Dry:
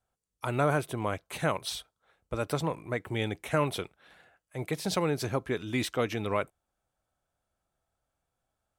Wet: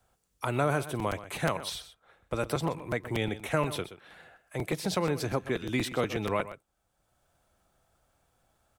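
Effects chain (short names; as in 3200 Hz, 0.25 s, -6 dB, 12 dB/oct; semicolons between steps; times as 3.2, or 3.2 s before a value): echo 0.125 s -15 dB; crackling interface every 0.12 s, samples 256, repeat, from 0.99; three-band squash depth 40%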